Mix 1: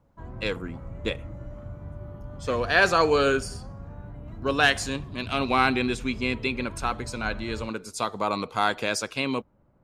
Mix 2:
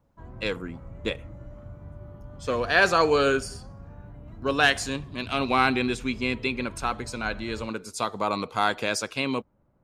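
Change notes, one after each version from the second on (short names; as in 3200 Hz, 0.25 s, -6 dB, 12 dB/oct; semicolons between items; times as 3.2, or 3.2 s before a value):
background -3.5 dB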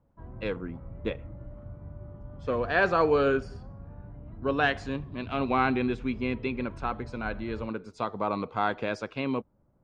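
master: add tape spacing loss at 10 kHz 33 dB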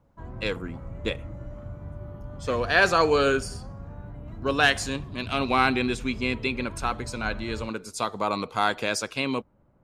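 background +4.0 dB; master: remove tape spacing loss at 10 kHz 33 dB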